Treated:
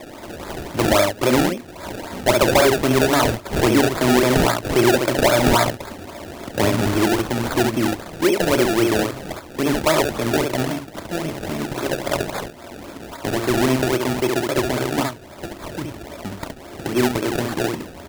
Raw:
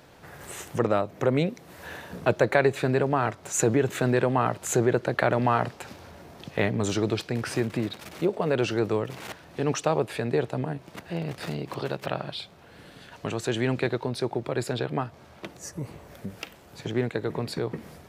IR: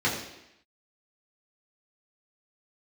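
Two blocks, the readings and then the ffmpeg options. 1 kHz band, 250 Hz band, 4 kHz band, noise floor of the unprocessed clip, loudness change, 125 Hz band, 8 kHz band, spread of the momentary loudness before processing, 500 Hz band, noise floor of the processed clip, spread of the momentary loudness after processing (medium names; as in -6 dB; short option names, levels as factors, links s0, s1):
+7.5 dB, +9.0 dB, +12.5 dB, -51 dBFS, +8.0 dB, +4.5 dB, +8.0 dB, 16 LU, +7.0 dB, -39 dBFS, 17 LU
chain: -filter_complex "[0:a]aecho=1:1:3.2:0.57,acrossover=split=190|1200[s0][s1][s2];[s1]acompressor=mode=upward:threshold=0.0158:ratio=2.5[s3];[s0][s3][s2]amix=inputs=3:normalize=0,aecho=1:1:32|69:0.282|0.596,acrusher=samples=29:mix=1:aa=0.000001:lfo=1:lforange=29:lforate=3.7,asoftclip=type=tanh:threshold=0.237,volume=2"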